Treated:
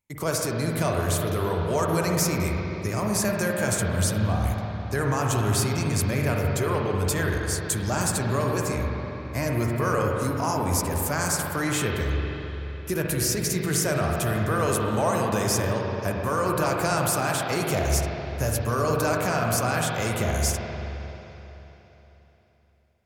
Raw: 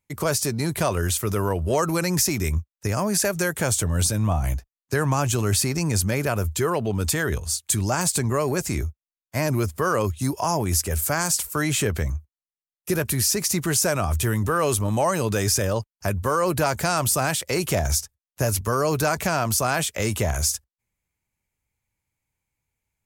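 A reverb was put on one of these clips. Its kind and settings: spring tank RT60 3.6 s, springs 43/56 ms, chirp 30 ms, DRR -1 dB; gain -4.5 dB

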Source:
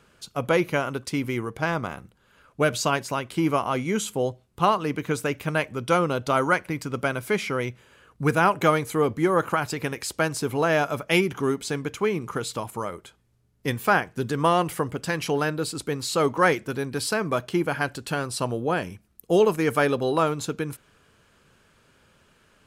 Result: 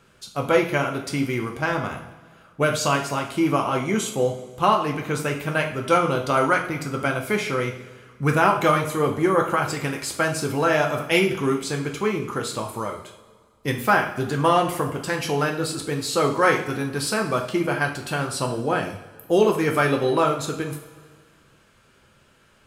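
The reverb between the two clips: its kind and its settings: two-slope reverb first 0.46 s, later 1.9 s, from -16 dB, DRR 1 dB

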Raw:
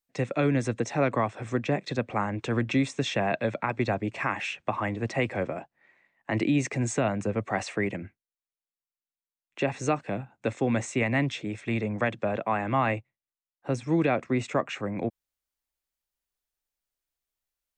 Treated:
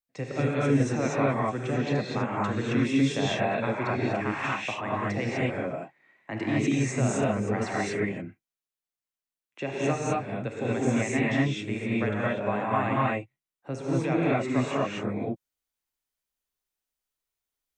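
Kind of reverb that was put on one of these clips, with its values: non-linear reverb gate 0.27 s rising, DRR -6 dB; gain -6.5 dB

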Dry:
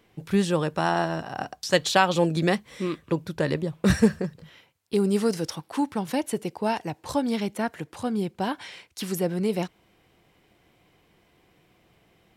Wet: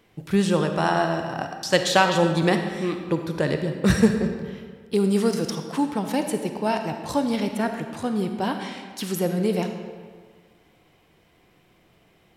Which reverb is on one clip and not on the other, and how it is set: digital reverb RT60 1.7 s, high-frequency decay 0.7×, pre-delay 10 ms, DRR 5.5 dB; gain +1.5 dB

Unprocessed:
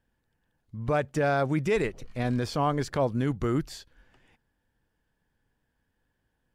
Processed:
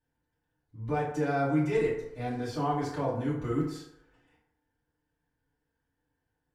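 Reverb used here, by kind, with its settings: FDN reverb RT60 0.79 s, low-frequency decay 0.75×, high-frequency decay 0.5×, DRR -10 dB; gain -15 dB

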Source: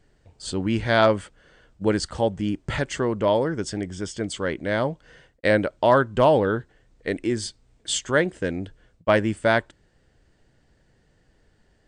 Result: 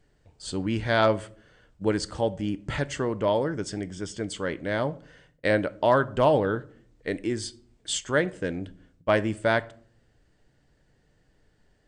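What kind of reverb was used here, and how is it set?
shoebox room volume 650 m³, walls furnished, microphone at 0.39 m; gain -3.5 dB

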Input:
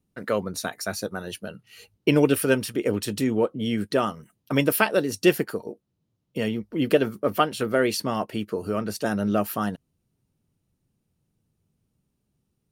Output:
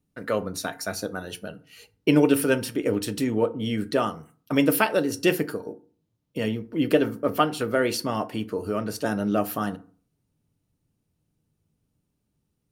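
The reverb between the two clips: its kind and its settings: FDN reverb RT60 0.42 s, low-frequency decay 1.2×, high-frequency decay 0.55×, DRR 10 dB; gain -1 dB

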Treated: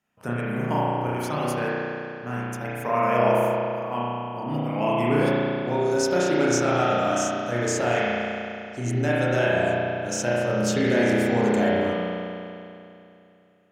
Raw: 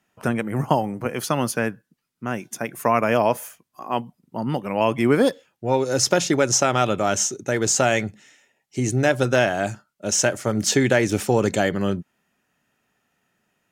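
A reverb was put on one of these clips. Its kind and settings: spring tank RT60 2.7 s, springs 33 ms, chirp 70 ms, DRR -8 dB; gain -10 dB

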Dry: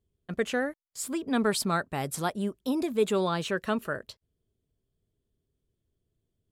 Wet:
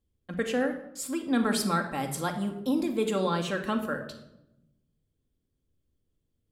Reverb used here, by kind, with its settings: shoebox room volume 2900 m³, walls furnished, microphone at 2.2 m; gain -2 dB

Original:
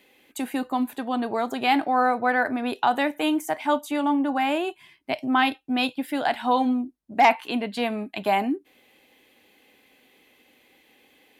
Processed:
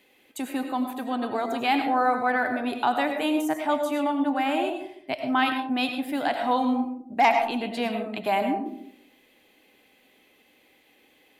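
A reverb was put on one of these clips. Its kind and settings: digital reverb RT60 0.66 s, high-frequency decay 0.3×, pre-delay 60 ms, DRR 5 dB; gain -2.5 dB

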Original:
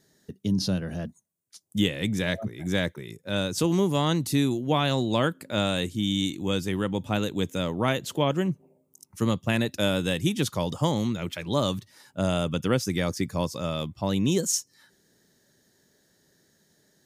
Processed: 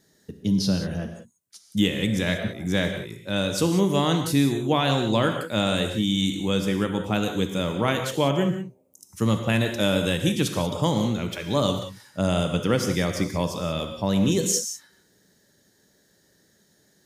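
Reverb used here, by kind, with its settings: non-linear reverb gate 0.21 s flat, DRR 5 dB; gain +1.5 dB

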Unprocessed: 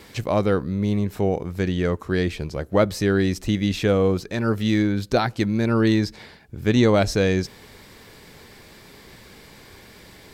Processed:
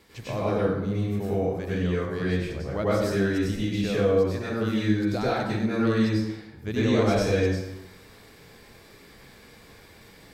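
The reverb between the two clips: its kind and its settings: plate-style reverb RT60 0.9 s, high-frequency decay 0.65×, pre-delay 85 ms, DRR -8 dB; gain -12.5 dB

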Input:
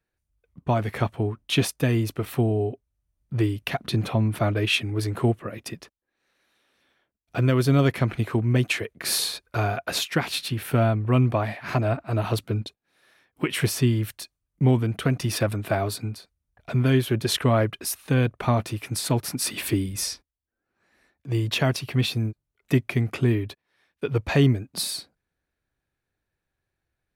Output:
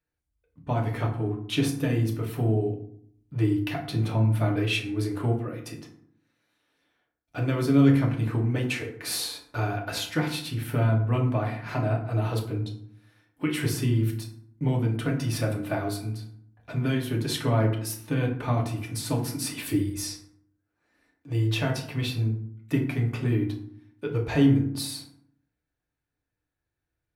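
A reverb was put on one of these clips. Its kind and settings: FDN reverb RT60 0.63 s, low-frequency decay 1.45×, high-frequency decay 0.55×, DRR -0.5 dB; gain -7.5 dB

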